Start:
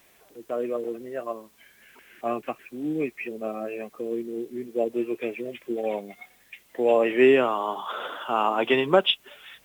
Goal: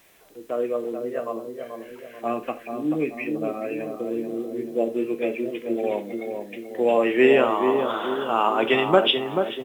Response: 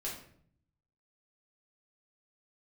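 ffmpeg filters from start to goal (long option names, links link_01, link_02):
-filter_complex "[0:a]asplit=2[link_01][link_02];[link_02]adelay=435,lowpass=frequency=830:poles=1,volume=-4.5dB,asplit=2[link_03][link_04];[link_04]adelay=435,lowpass=frequency=830:poles=1,volume=0.55,asplit=2[link_05][link_06];[link_06]adelay=435,lowpass=frequency=830:poles=1,volume=0.55,asplit=2[link_07][link_08];[link_08]adelay=435,lowpass=frequency=830:poles=1,volume=0.55,asplit=2[link_09][link_10];[link_10]adelay=435,lowpass=frequency=830:poles=1,volume=0.55,asplit=2[link_11][link_12];[link_12]adelay=435,lowpass=frequency=830:poles=1,volume=0.55,asplit=2[link_13][link_14];[link_14]adelay=435,lowpass=frequency=830:poles=1,volume=0.55[link_15];[link_01][link_03][link_05][link_07][link_09][link_11][link_13][link_15]amix=inputs=8:normalize=0,asplit=2[link_16][link_17];[1:a]atrim=start_sample=2205,atrim=end_sample=3087,asetrate=33516,aresample=44100[link_18];[link_17][link_18]afir=irnorm=-1:irlink=0,volume=-9dB[link_19];[link_16][link_19]amix=inputs=2:normalize=0"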